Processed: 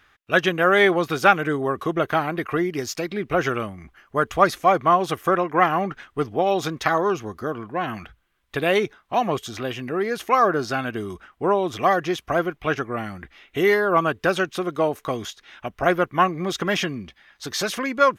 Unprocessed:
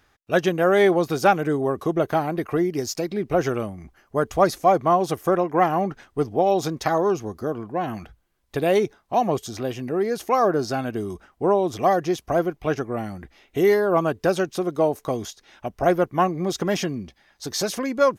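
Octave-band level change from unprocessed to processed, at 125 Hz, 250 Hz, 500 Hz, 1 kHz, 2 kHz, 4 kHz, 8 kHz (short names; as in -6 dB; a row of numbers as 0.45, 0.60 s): -1.5, -1.5, -1.5, +1.5, +7.0, +4.0, -1.5 dB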